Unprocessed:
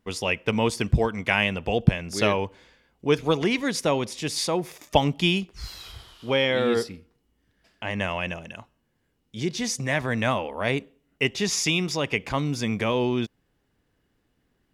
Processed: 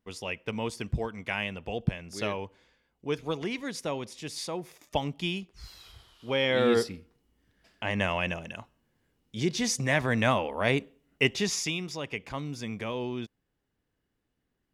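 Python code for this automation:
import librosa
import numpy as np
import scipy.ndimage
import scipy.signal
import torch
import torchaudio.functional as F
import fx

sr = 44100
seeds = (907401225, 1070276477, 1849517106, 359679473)

y = fx.gain(x, sr, db=fx.line((6.11, -9.5), (6.63, -0.5), (11.31, -0.5), (11.79, -9.5)))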